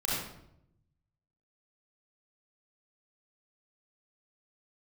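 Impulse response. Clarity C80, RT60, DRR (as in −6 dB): 2.0 dB, 0.75 s, −7.0 dB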